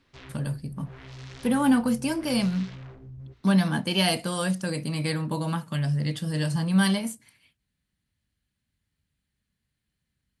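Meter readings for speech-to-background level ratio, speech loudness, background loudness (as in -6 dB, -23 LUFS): 18.0 dB, -26.0 LUFS, -44.0 LUFS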